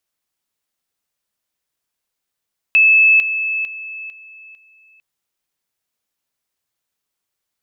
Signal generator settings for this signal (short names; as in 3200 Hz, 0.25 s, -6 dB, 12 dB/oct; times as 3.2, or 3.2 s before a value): level ladder 2610 Hz -7.5 dBFS, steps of -10 dB, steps 5, 0.45 s 0.00 s